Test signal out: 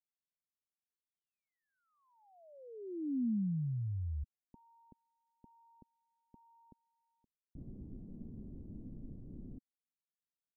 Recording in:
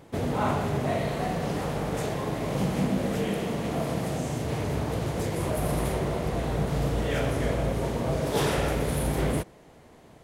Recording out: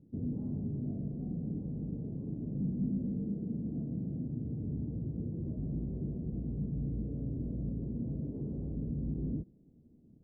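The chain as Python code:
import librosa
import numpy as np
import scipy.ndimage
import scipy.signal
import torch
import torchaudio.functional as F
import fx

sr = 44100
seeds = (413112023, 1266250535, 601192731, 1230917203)

y = 10.0 ** (-21.5 / 20.0) * (np.abs((x / 10.0 ** (-21.5 / 20.0) + 3.0) % 4.0 - 2.0) - 1.0)
y = fx.ladder_lowpass(y, sr, hz=300.0, resonance_pct=40)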